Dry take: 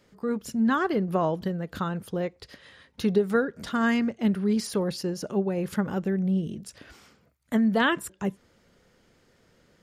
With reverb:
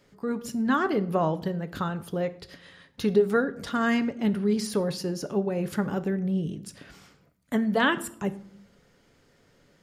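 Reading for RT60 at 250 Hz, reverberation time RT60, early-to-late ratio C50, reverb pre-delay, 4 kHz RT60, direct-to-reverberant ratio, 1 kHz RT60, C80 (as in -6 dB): 1.0 s, 0.65 s, 17.0 dB, 7 ms, 0.45 s, 10.0 dB, 0.65 s, 20.0 dB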